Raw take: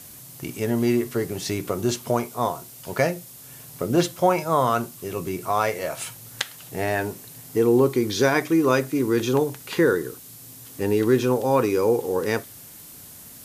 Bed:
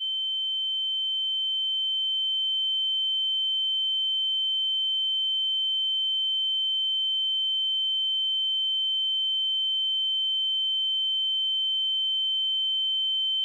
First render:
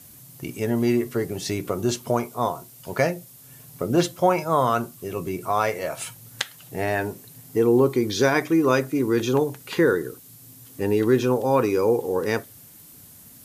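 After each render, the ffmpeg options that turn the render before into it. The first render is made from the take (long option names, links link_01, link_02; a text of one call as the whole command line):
ffmpeg -i in.wav -af "afftdn=noise_reduction=6:noise_floor=-44" out.wav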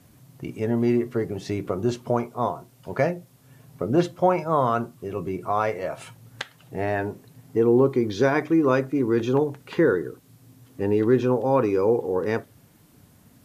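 ffmpeg -i in.wav -af "lowpass=frequency=1600:poles=1" out.wav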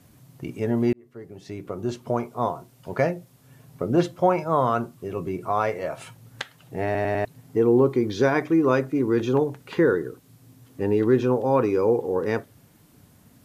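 ffmpeg -i in.wav -filter_complex "[0:a]asplit=6[link_01][link_02][link_03][link_04][link_05][link_06];[link_01]atrim=end=0.93,asetpts=PTS-STARTPTS,afade=type=out:start_time=0.926:duration=0.004:curve=hsin[link_07];[link_02]atrim=start=0.93:end=6.952,asetpts=PTS-STARTPTS,afade=type=in:duration=1.49[link_08];[link_03]atrim=start=6.848:end=6.952[link_09];[link_04]atrim=start=6.848:end=6.952[link_10];[link_05]atrim=start=6.848:end=6.952[link_11];[link_06]atrim=start=7.248[link_12];[link_07][link_08]concat=n=2:v=0:a=1[link_13];[link_13][link_09]acrossfade=duration=0.004:curve1=hsin:curve2=hsin[link_14];[link_14][link_10]acrossfade=duration=0.004:curve1=hsin:curve2=hsin[link_15];[link_15][link_11]acrossfade=duration=0.004:curve1=hsin:curve2=hsin[link_16];[link_16][link_12]acrossfade=duration=0.004:curve1=hsin:curve2=hsin" out.wav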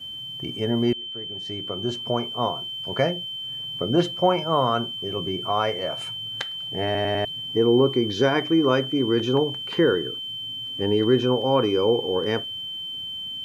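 ffmpeg -i in.wav -i bed.wav -filter_complex "[1:a]volume=-7dB[link_01];[0:a][link_01]amix=inputs=2:normalize=0" out.wav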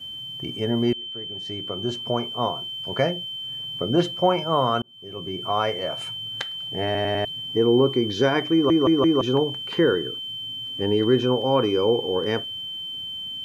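ffmpeg -i in.wav -filter_complex "[0:a]asplit=6[link_01][link_02][link_03][link_04][link_05][link_06];[link_01]atrim=end=4.82,asetpts=PTS-STARTPTS,afade=type=out:start_time=4.816:duration=0.004:curve=hsin[link_07];[link_02]atrim=start=4.82:end=8.702,asetpts=PTS-STARTPTS,afade=type=in:duration=0.71[link_08];[link_03]atrim=start=8.528:end=8.702[link_09];[link_04]atrim=start=8.528:end=8.702[link_10];[link_05]atrim=start=8.528:end=8.702[link_11];[link_06]atrim=start=9.208[link_12];[link_07][link_08]concat=n=2:v=0:a=1[link_13];[link_13][link_09]acrossfade=duration=0.004:curve1=hsin:curve2=hsin[link_14];[link_14][link_10]acrossfade=duration=0.004:curve1=hsin:curve2=hsin[link_15];[link_15][link_11]acrossfade=duration=0.004:curve1=hsin:curve2=hsin[link_16];[link_16][link_12]acrossfade=duration=0.004:curve1=hsin:curve2=hsin" out.wav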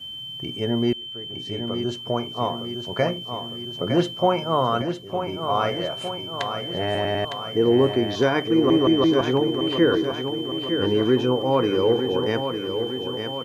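ffmpeg -i in.wav -af "aecho=1:1:908|1816|2724|3632|4540|5448|6356:0.422|0.245|0.142|0.0823|0.0477|0.0277|0.0161" out.wav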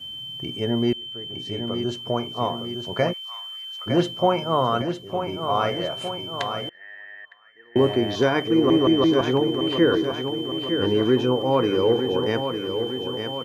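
ffmpeg -i in.wav -filter_complex "[0:a]asplit=3[link_01][link_02][link_03];[link_01]afade=type=out:start_time=3.12:duration=0.02[link_04];[link_02]highpass=frequency=1200:width=0.5412,highpass=frequency=1200:width=1.3066,afade=type=in:start_time=3.12:duration=0.02,afade=type=out:start_time=3.86:duration=0.02[link_05];[link_03]afade=type=in:start_time=3.86:duration=0.02[link_06];[link_04][link_05][link_06]amix=inputs=3:normalize=0,asettb=1/sr,asplit=3[link_07][link_08][link_09];[link_07]atrim=end=6.694[link_10];[link_08]atrim=start=6.69:end=7.76,asetpts=PTS-STARTPTS,afade=type=in:duration=0.004:curve=qsin,afade=type=out:start_time=1.066:duration=0.004:curve=qsin,bandpass=frequency=1800:width_type=q:width=17[link_11];[link_09]atrim=start=7.756[link_12];[link_10][link_11]acrossfade=duration=0.004:curve1=hsin:curve2=qsin[link_13];[link_13][link_12]acrossfade=duration=0.004:curve1=qsin:curve2=hsin" out.wav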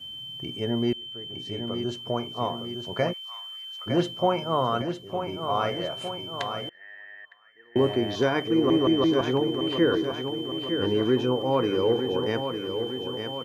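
ffmpeg -i in.wav -af "volume=-3.5dB" out.wav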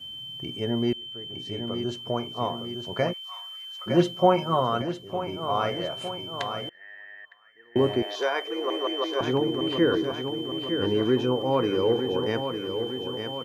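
ffmpeg -i in.wav -filter_complex "[0:a]asettb=1/sr,asplit=3[link_01][link_02][link_03];[link_01]atrim=end=3.234[link_04];[link_02]atrim=start=3.23:end=4.6,asetpts=PTS-STARTPTS,afade=type=in:duration=0.004:curve=qsin,afade=type=out:start_time=1.366:duration=0.004:curve=qsin,aecho=1:1:5.4:0.7,atrim=end_sample=60417[link_05];[link_03]atrim=start=4.596[link_06];[link_04][link_05]acrossfade=duration=0.004:curve1=hsin:curve2=qsin[link_07];[link_07][link_06]acrossfade=duration=0.004:curve1=qsin:curve2=hsin,asettb=1/sr,asplit=3[link_08][link_09][link_10];[link_08]atrim=end=8.024[link_11];[link_09]atrim=start=8.02:end=9.21,asetpts=PTS-STARTPTS,afade=type=in:duration=0.004:curve=qsin,afade=type=out:start_time=1.186:duration=0.004:curve=qsin,highpass=frequency=460:width=0.5412,highpass=frequency=460:width=1.3066[link_12];[link_10]atrim=start=9.206[link_13];[link_11][link_12]acrossfade=duration=0.004:curve1=hsin:curve2=qsin[link_14];[link_14][link_13]acrossfade=duration=0.004:curve1=qsin:curve2=hsin" out.wav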